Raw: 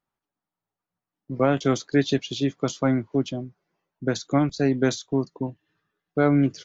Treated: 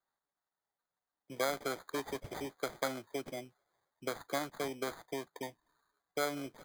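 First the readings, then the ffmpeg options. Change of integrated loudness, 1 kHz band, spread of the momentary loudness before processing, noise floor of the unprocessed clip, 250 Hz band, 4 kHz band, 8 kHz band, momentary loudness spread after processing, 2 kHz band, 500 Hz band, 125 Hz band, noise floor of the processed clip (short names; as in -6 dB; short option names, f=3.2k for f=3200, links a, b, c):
-15.0 dB, -9.0 dB, 11 LU, under -85 dBFS, -21.5 dB, -10.0 dB, n/a, 10 LU, -9.0 dB, -13.0 dB, -25.5 dB, under -85 dBFS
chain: -filter_complex "[0:a]acompressor=threshold=-27dB:ratio=3,acrossover=split=470 3000:gain=0.1 1 0.126[a][b][c];[a][b][c]amix=inputs=3:normalize=0,acrusher=samples=16:mix=1:aa=0.000001"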